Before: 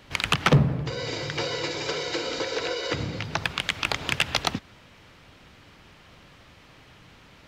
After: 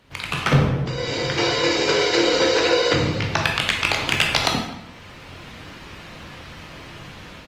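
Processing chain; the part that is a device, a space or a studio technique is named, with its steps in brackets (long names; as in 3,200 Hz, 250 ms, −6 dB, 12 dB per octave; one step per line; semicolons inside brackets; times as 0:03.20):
speakerphone in a meeting room (convolution reverb RT60 0.80 s, pre-delay 13 ms, DRR 0 dB; far-end echo of a speakerphone 140 ms, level −22 dB; automatic gain control gain up to 14 dB; level −4 dB; Opus 24 kbit/s 48,000 Hz)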